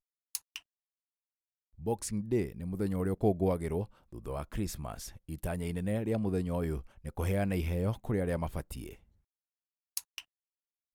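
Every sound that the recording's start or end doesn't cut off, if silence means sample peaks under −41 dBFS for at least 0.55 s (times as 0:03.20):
0:01.82–0:08.93
0:09.97–0:10.20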